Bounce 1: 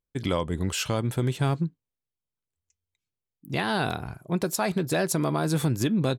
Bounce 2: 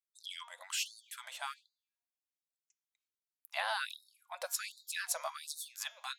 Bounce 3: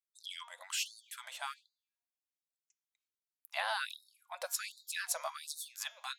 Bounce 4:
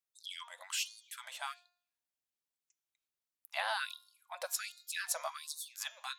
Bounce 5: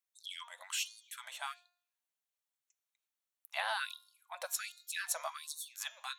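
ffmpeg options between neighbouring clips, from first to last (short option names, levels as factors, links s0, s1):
-af "lowshelf=f=240:g=-9,bandreject=f=236.6:t=h:w=4,bandreject=f=473.2:t=h:w=4,bandreject=f=709.8:t=h:w=4,bandreject=f=946.4:t=h:w=4,bandreject=f=1183:t=h:w=4,bandreject=f=1419.6:t=h:w=4,bandreject=f=1656.2:t=h:w=4,bandreject=f=1892.8:t=h:w=4,bandreject=f=2129.4:t=h:w=4,bandreject=f=2366:t=h:w=4,bandreject=f=2602.6:t=h:w=4,bandreject=f=2839.2:t=h:w=4,bandreject=f=3075.8:t=h:w=4,bandreject=f=3312.4:t=h:w=4,bandreject=f=3549:t=h:w=4,bandreject=f=3785.6:t=h:w=4,bandreject=f=4022.2:t=h:w=4,bandreject=f=4258.8:t=h:w=4,bandreject=f=4495.4:t=h:w=4,bandreject=f=4732:t=h:w=4,bandreject=f=4968.6:t=h:w=4,bandreject=f=5205.2:t=h:w=4,bandreject=f=5441.8:t=h:w=4,bandreject=f=5678.4:t=h:w=4,bandreject=f=5915:t=h:w=4,bandreject=f=6151.6:t=h:w=4,bandreject=f=6388.2:t=h:w=4,bandreject=f=6624.8:t=h:w=4,bandreject=f=6861.4:t=h:w=4,bandreject=f=7098:t=h:w=4,afftfilt=real='re*gte(b*sr/1024,500*pow(3700/500,0.5+0.5*sin(2*PI*1.3*pts/sr)))':imag='im*gte(b*sr/1024,500*pow(3700/500,0.5+0.5*sin(2*PI*1.3*pts/sr)))':win_size=1024:overlap=0.75,volume=0.531"
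-af anull
-af "bandreject=f=353.4:t=h:w=4,bandreject=f=706.8:t=h:w=4,bandreject=f=1060.2:t=h:w=4,bandreject=f=1413.6:t=h:w=4,bandreject=f=1767:t=h:w=4,bandreject=f=2120.4:t=h:w=4,bandreject=f=2473.8:t=h:w=4,bandreject=f=2827.2:t=h:w=4,bandreject=f=3180.6:t=h:w=4,bandreject=f=3534:t=h:w=4,bandreject=f=3887.4:t=h:w=4,bandreject=f=4240.8:t=h:w=4,bandreject=f=4594.2:t=h:w=4,bandreject=f=4947.6:t=h:w=4,bandreject=f=5301:t=h:w=4,bandreject=f=5654.4:t=h:w=4,bandreject=f=6007.8:t=h:w=4,bandreject=f=6361.2:t=h:w=4,bandreject=f=6714.6:t=h:w=4,bandreject=f=7068:t=h:w=4"
-af "highpass=520,bandreject=f=4900:w=7.3"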